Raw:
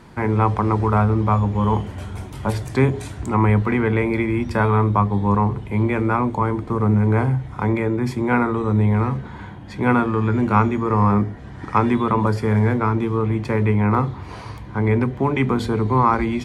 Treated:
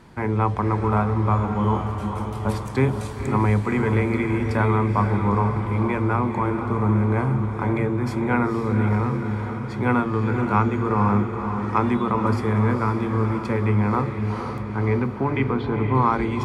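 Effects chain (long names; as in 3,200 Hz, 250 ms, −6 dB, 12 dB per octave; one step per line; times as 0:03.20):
0:14.62–0:15.95: low-pass filter 3,300 Hz 24 dB per octave
feedback delay with all-pass diffusion 493 ms, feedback 61%, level −7 dB
level −3.5 dB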